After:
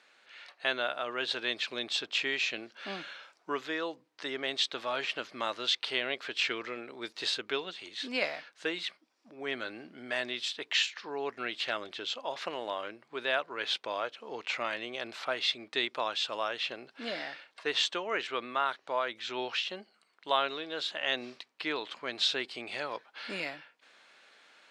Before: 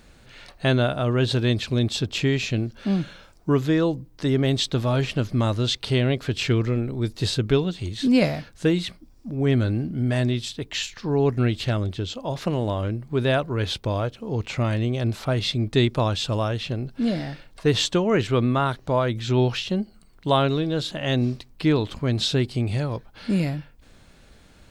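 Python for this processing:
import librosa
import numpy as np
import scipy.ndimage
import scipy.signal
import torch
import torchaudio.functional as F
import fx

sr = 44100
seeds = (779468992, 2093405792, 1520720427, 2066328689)

p1 = fx.bandpass_edges(x, sr, low_hz=330.0, high_hz=2100.0)
p2 = fx.rider(p1, sr, range_db=10, speed_s=0.5)
p3 = p1 + F.gain(torch.from_numpy(p2), 0.0).numpy()
p4 = np.diff(p3, prepend=0.0)
y = F.gain(torch.from_numpy(p4), 6.5).numpy()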